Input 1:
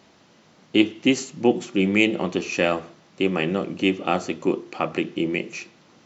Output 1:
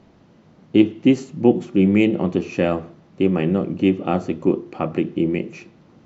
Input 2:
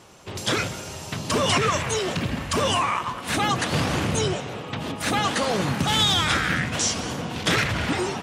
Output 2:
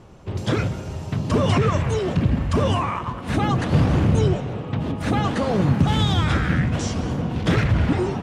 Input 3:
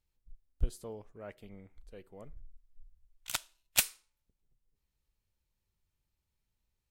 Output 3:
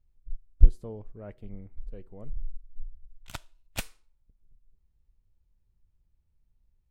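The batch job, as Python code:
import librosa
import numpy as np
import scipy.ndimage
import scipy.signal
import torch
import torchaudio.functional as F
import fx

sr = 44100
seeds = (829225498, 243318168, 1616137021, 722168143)

y = fx.tilt_eq(x, sr, slope=-3.5)
y = y * 10.0 ** (-1.5 / 20.0)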